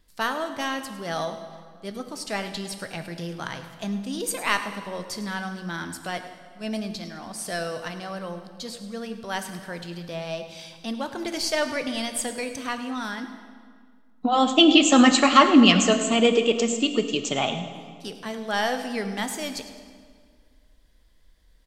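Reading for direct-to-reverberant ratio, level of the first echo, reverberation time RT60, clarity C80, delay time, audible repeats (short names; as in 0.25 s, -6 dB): 7.5 dB, -16.0 dB, 1.9 s, 9.5 dB, 0.105 s, 1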